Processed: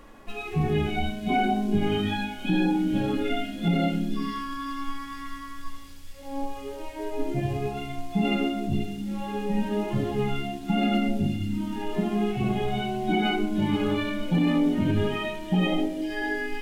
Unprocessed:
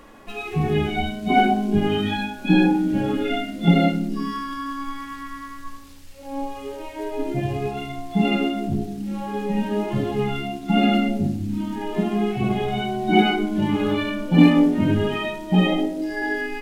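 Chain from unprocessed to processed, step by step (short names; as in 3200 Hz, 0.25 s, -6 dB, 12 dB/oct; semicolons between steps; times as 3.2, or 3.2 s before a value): low shelf 71 Hz +7.5 dB; limiter -11 dBFS, peak gain reduction 9.5 dB; thin delay 0.485 s, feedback 63%, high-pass 3900 Hz, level -4 dB; gain -4 dB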